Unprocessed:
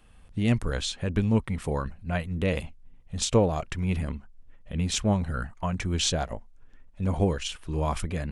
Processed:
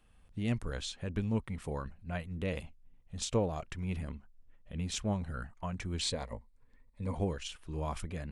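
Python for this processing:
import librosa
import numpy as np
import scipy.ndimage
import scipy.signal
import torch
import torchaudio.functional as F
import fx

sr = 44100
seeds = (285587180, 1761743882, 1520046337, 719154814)

y = fx.ripple_eq(x, sr, per_octave=0.96, db=10, at=(6.01, 7.15))
y = F.gain(torch.from_numpy(y), -9.0).numpy()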